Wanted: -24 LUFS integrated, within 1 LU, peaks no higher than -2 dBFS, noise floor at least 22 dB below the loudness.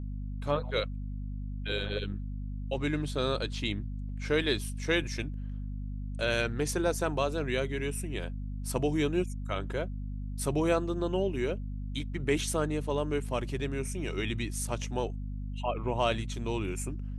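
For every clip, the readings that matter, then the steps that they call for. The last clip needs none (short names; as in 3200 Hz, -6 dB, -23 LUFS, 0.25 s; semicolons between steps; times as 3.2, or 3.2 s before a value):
hum 50 Hz; harmonics up to 250 Hz; hum level -34 dBFS; loudness -32.5 LUFS; peak -14.5 dBFS; loudness target -24.0 LUFS
-> notches 50/100/150/200/250 Hz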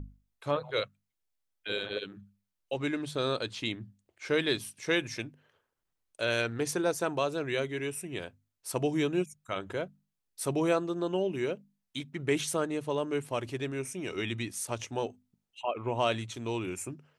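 hum none; loudness -33.0 LUFS; peak -14.5 dBFS; loudness target -24.0 LUFS
-> gain +9 dB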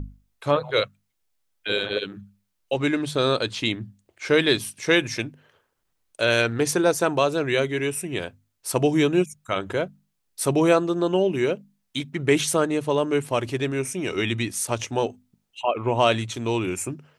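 loudness -24.0 LUFS; peak -5.5 dBFS; noise floor -75 dBFS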